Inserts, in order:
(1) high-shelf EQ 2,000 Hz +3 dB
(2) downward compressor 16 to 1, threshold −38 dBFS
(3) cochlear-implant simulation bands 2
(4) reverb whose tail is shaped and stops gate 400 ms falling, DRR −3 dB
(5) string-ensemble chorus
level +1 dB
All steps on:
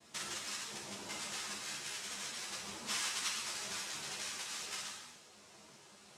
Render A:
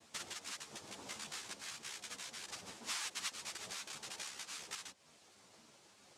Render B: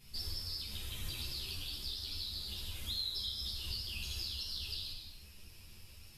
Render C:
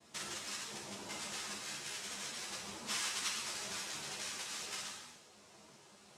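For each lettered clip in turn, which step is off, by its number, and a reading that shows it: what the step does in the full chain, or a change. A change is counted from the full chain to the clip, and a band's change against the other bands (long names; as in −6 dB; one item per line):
4, change in integrated loudness −4.5 LU
3, 125 Hz band +22.0 dB
1, 125 Hz band +1.5 dB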